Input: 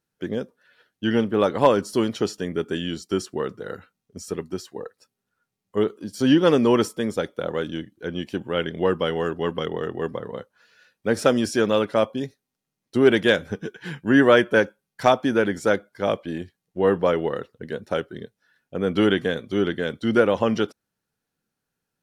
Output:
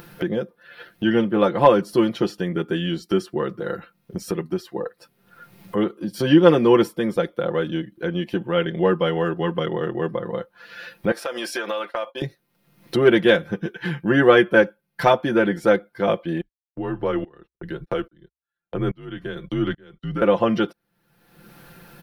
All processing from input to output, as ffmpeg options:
-filter_complex "[0:a]asettb=1/sr,asplit=3[a][b][c];[a]atrim=end=11.114[d];[b]atrim=start=11.11:end=12.22,asetpts=PTS-STARTPTS,afade=t=in:d=0.004:c=qsin,afade=t=out:st=1.106:d=0.004:c=qsin,agate=range=-33dB:threshold=-31dB:ratio=3:release=100:detection=peak,highpass=700,acompressor=threshold=-28dB:ratio=5:attack=3.2:release=140:knee=1:detection=peak[e];[c]atrim=start=12.216[f];[d][e]acrossfade=d=0.004:c1=hsin:c2=qsin[g];[g][f]acrossfade=d=0.004:c1=qsin:c2=hsin,asettb=1/sr,asplit=3[h][i][j];[h]atrim=end=16.414[k];[i]atrim=start=16.41:end=20.22,asetpts=PTS-STARTPTS,afade=t=in:d=0.004:c=qsin,afade=t=out:st=3.806:d=0.004:c=qsin,agate=range=-33dB:threshold=-43dB:ratio=16:release=100:detection=peak,afreqshift=-65,aeval=exprs='val(0)*pow(10,-32*if(lt(mod(-1.2*n/s,1),2*abs(-1.2)/1000),1-mod(-1.2*n/s,1)/(2*abs(-1.2)/1000),(mod(-1.2*n/s,1)-2*abs(-1.2)/1000)/(1-2*abs(-1.2)/1000))/20)':c=same[l];[j]atrim=start=20.216[m];[k][l]acrossfade=d=0.004:c1=hsin:c2=qsin[n];[n][m]acrossfade=d=0.004:c1=qsin:c2=hsin,equalizer=f=7.1k:t=o:w=1:g=-13.5,aecho=1:1:5.8:0.74,acompressor=mode=upward:threshold=-21dB:ratio=2.5,volume=1dB"

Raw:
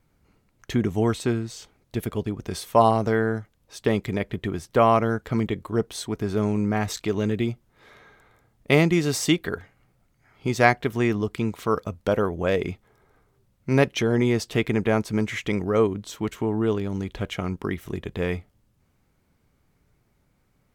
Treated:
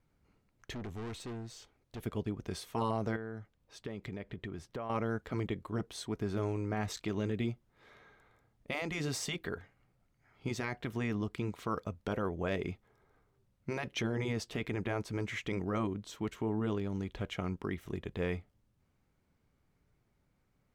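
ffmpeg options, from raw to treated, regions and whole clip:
-filter_complex "[0:a]asettb=1/sr,asplit=3[a][b][c];[a]atrim=end=0.744[d];[b]atrim=start=0.74:end=2.05,asetpts=PTS-STARTPTS,afade=t=in:d=0.004:c=qsin,afade=t=out:st=1.306:d=0.004:c=qsin,equalizer=f=180:t=o:w=0.4:g=-6.5,aeval=exprs='(tanh(35.5*val(0)+0.3)-tanh(0.3))/35.5':c=same[e];[c]atrim=start=2.046[f];[d][e]acrossfade=d=0.004:c1=hsin:c2=qsin[g];[g][f]acrossfade=d=0.004:c1=qsin:c2=hsin,asettb=1/sr,asplit=3[h][i][j];[h]atrim=end=3.164[k];[i]atrim=start=3.16:end=4.9,asetpts=PTS-STARTPTS,afade=t=in:d=0.004:c=qsin,afade=t=out:st=1.736:d=0.004:c=qsin,highshelf=f=6.8k:g=-7,acompressor=threshold=-29dB:ratio=6:attack=3.2:release=140:knee=1:detection=peak[l];[j]atrim=start=4.896[m];[k][l]acrossfade=d=0.004:c1=hsin:c2=qsin[n];[n][m]acrossfade=d=0.004:c1=qsin:c2=hsin,afftfilt=real='re*lt(hypot(re,im),0.631)':imag='im*lt(hypot(re,im),0.631)':win_size=1024:overlap=0.75,highshelf=f=8.5k:g=-7.5,alimiter=limit=-16.5dB:level=0:latency=1:release=25,volume=-8dB"

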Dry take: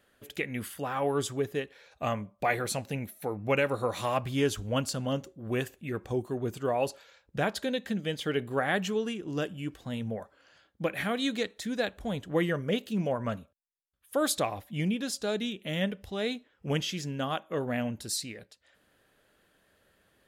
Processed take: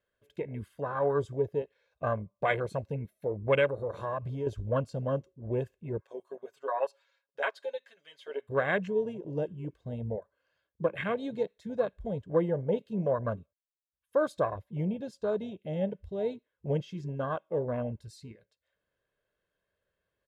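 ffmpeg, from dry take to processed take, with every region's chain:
-filter_complex "[0:a]asettb=1/sr,asplit=3[a][b][c];[a]atrim=end=3.664[d];[b]atrim=start=3.66:end=4.47,asetpts=PTS-STARTPTS,afade=t=in:d=0.004:c=qsin,afade=t=out:st=0.806:d=0.004:c=qsin,bandreject=f=113.4:t=h:w=4,bandreject=f=226.8:t=h:w=4,bandreject=f=340.2:t=h:w=4,bandreject=f=453.6:t=h:w=4,bandreject=f=567:t=h:w=4,acompressor=threshold=-31dB:ratio=3:attack=3.2:release=140:knee=1:detection=peak[e];[c]atrim=start=4.466[f];[d][e]acrossfade=d=0.004:c1=hsin:c2=qsin[g];[g][f]acrossfade=d=0.004:c1=qsin:c2=hsin,asettb=1/sr,asplit=3[h][i][j];[h]atrim=end=6.014[k];[i]atrim=start=6.01:end=8.49,asetpts=PTS-STARTPTS,afade=t=in:d=0.004:c=qsin,afade=t=out:st=2.476:d=0.004:c=qsin,highpass=820,aecho=1:1:7.3:0.98,atrim=end_sample=109368[l];[j]atrim=start=8.486[m];[k][l]acrossfade=d=0.004:c1=hsin:c2=qsin[n];[n][m]acrossfade=d=0.004:c1=qsin:c2=hsin,aemphasis=mode=reproduction:type=50kf,afwtdn=0.0251,aecho=1:1:1.9:0.5"

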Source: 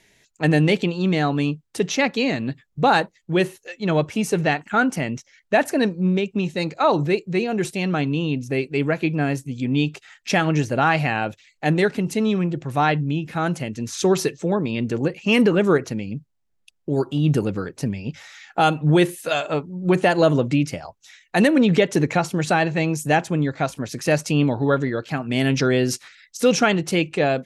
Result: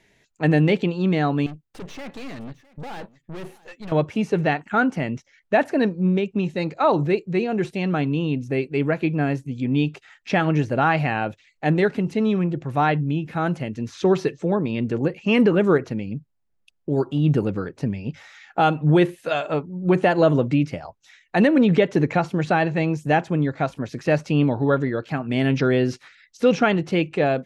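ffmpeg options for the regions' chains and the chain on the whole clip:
-filter_complex "[0:a]asettb=1/sr,asplit=3[a][b][c];[a]atrim=end=1.464[d];[b]atrim=start=1.46:end=3.92,asetpts=PTS-STARTPTS,afade=t=in:d=0.004:c=qsin,afade=t=out:st=2.456:d=0.004:c=qsin,highshelf=f=9.8k:g=11.5,aeval=exprs='(tanh(44.7*val(0)+0.7)-tanh(0.7))/44.7':c=same,aecho=1:1:657:0.0841,atrim=end_sample=108486[e];[c]atrim=start=3.916[f];[d][e]acrossfade=d=0.004:c1=hsin:c2=qsin[g];[g][f]acrossfade=d=0.004:c1=qsin:c2=hsin,acrossover=split=5200[h][i];[i]acompressor=threshold=-45dB:ratio=4:attack=1:release=60[j];[h][j]amix=inputs=2:normalize=0,highshelf=f=3.7k:g=-10.5"

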